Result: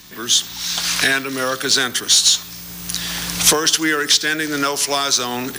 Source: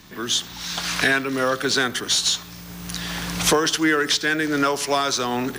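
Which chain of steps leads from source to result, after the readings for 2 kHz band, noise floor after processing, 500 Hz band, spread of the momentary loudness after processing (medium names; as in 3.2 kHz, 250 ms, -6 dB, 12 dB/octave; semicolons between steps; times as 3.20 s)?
+2.0 dB, -34 dBFS, -0.5 dB, 10 LU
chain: treble shelf 2.9 kHz +11.5 dB; trim -1 dB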